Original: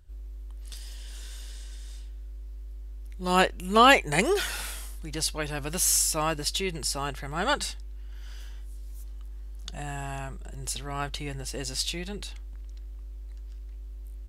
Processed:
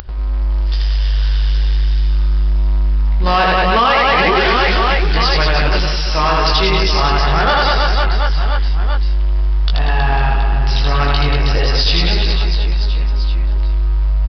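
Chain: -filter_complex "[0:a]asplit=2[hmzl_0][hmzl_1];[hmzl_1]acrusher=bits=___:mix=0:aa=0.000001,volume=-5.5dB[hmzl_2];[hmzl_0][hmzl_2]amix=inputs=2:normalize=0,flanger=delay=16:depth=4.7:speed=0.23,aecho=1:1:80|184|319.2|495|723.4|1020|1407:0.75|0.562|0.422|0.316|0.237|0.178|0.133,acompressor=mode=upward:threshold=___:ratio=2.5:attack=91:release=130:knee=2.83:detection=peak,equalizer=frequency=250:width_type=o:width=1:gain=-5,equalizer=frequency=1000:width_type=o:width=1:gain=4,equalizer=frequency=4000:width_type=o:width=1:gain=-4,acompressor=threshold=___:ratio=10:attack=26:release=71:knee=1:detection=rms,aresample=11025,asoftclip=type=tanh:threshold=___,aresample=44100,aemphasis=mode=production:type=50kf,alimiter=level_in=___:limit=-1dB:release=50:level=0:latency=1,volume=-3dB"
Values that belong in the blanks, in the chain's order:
6, -44dB, -25dB, -23dB, 19dB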